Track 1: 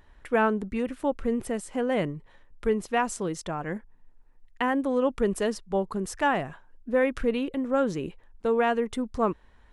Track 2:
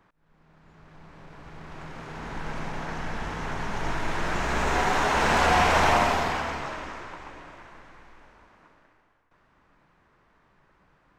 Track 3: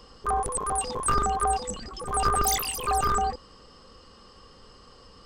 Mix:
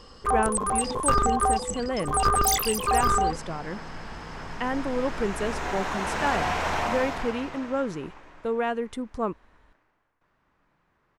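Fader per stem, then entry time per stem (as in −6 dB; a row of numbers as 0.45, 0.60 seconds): −3.0, −6.5, +2.0 decibels; 0.00, 0.90, 0.00 seconds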